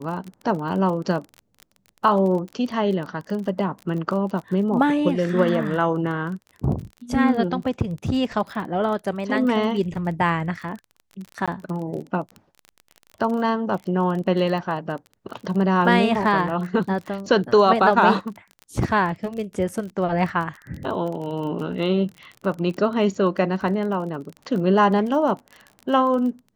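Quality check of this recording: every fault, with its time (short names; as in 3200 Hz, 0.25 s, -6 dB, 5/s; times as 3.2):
crackle 28/s -30 dBFS
11.46–11.48 gap 16 ms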